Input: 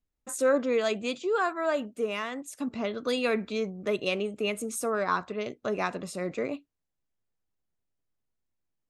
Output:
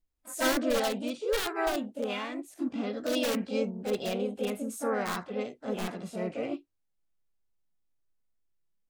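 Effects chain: wrapped overs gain 19.5 dB; harmoniser +3 st -4 dB, +4 st -7 dB, +5 st -13 dB; harmonic-percussive split percussive -15 dB

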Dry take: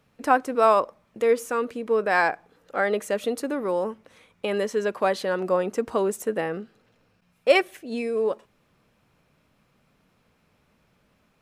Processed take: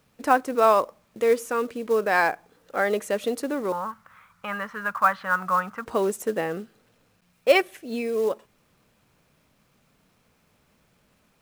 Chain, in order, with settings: 3.72–5.86 EQ curve 170 Hz 0 dB, 380 Hz -22 dB, 1300 Hz +14 dB, 1900 Hz +2 dB, 7300 Hz -24 dB; companded quantiser 6-bit

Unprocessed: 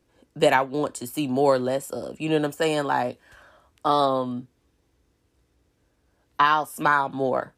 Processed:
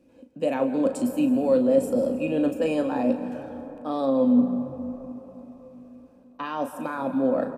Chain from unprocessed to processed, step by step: bell 230 Hz +5 dB 0.58 oct; reverse; compressor 6:1, threshold -29 dBFS, peak gain reduction 15 dB; reverse; doubler 37 ms -9.5 dB; small resonant body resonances 260/520/2500 Hz, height 16 dB, ringing for 35 ms; frequency-shifting echo 0.163 s, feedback 48%, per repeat -55 Hz, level -20 dB; on a send at -10 dB: reverb RT60 4.5 s, pre-delay 0.118 s; on the sum: gain -3.5 dB

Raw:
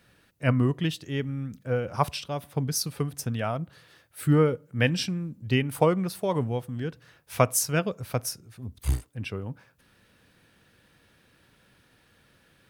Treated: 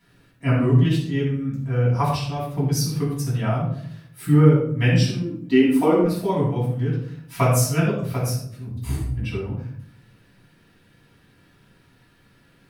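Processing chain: 5.01–6.04 resonant low shelf 190 Hz -11 dB, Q 3; reverb RT60 0.60 s, pre-delay 4 ms, DRR -8.5 dB; gain -8 dB

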